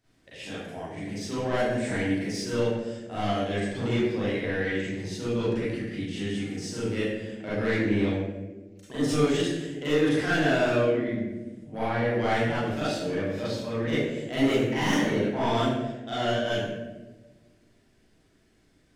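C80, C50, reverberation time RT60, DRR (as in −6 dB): 1.0 dB, −3.5 dB, 1.2 s, −11.5 dB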